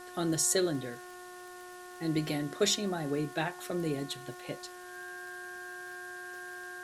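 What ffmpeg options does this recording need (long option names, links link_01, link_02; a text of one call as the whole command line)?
ffmpeg -i in.wav -af "adeclick=threshold=4,bandreject=frequency=360.5:width_type=h:width=4,bandreject=frequency=721:width_type=h:width=4,bandreject=frequency=1081.5:width_type=h:width=4,bandreject=frequency=1442:width_type=h:width=4,bandreject=frequency=1802.5:width_type=h:width=4,bandreject=frequency=1600:width=30,afwtdn=0.002" out.wav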